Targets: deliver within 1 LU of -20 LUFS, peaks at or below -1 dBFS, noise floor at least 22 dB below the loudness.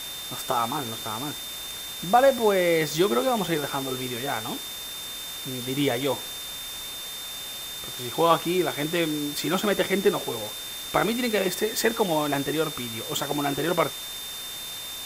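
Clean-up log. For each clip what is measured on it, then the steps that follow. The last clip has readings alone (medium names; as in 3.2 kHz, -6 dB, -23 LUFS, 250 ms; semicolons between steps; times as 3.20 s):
steady tone 3.6 kHz; tone level -36 dBFS; noise floor -36 dBFS; noise floor target -48 dBFS; loudness -26.0 LUFS; peak level -5.5 dBFS; loudness target -20.0 LUFS
-> band-stop 3.6 kHz, Q 30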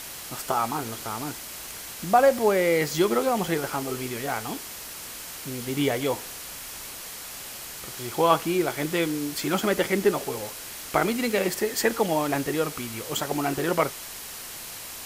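steady tone not found; noise floor -39 dBFS; noise floor target -49 dBFS
-> noise reduction 10 dB, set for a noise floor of -39 dBFS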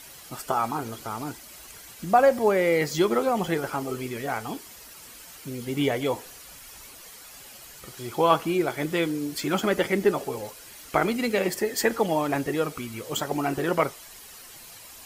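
noise floor -46 dBFS; noise floor target -48 dBFS
-> noise reduction 6 dB, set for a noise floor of -46 dBFS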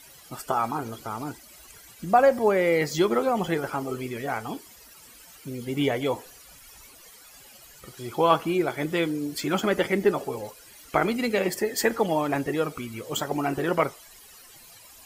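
noise floor -50 dBFS; loudness -26.0 LUFS; peak level -6.0 dBFS; loudness target -20.0 LUFS
-> trim +6 dB; peak limiter -1 dBFS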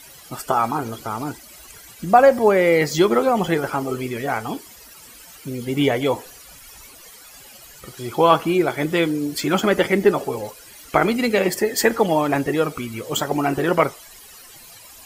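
loudness -20.0 LUFS; peak level -1.0 dBFS; noise floor -44 dBFS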